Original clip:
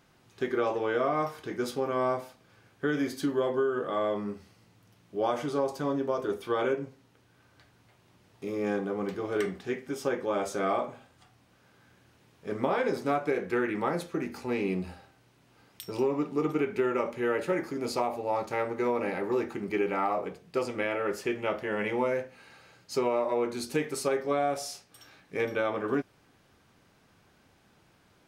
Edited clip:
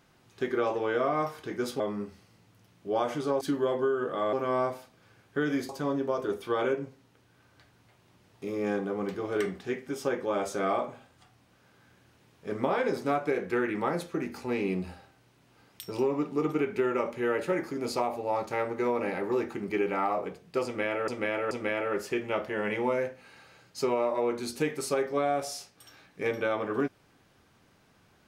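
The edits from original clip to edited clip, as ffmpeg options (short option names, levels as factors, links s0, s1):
-filter_complex "[0:a]asplit=7[s0][s1][s2][s3][s4][s5][s6];[s0]atrim=end=1.802[s7];[s1]atrim=start=4.078:end=5.692[s8];[s2]atrim=start=3.158:end=4.082[s9];[s3]atrim=start=1.798:end=3.162[s10];[s4]atrim=start=5.688:end=21.082[s11];[s5]atrim=start=20.648:end=21.082[s12];[s6]atrim=start=20.648[s13];[s7][s8]acrossfade=d=0.004:c1=hsin:c2=hsin[s14];[s14][s9]acrossfade=d=0.004:c1=hsin:c2=hsin[s15];[s15][s10]acrossfade=d=0.004:c1=hsin:c2=hsin[s16];[s16][s11]acrossfade=d=0.004:c1=hsin:c2=hsin[s17];[s17][s12]acrossfade=d=0.004:c1=hsin:c2=hsin[s18];[s18][s13]acrossfade=d=0.004:c1=hsin:c2=hsin"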